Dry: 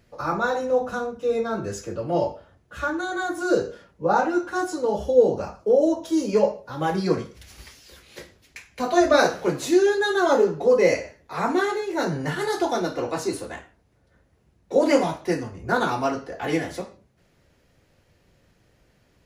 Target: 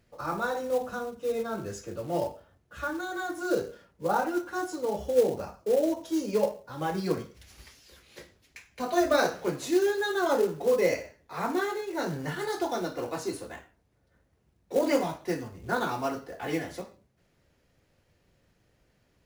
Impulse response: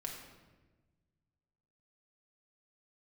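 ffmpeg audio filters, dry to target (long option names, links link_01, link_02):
-af "acrusher=bits=5:mode=log:mix=0:aa=0.000001,volume=-6.5dB"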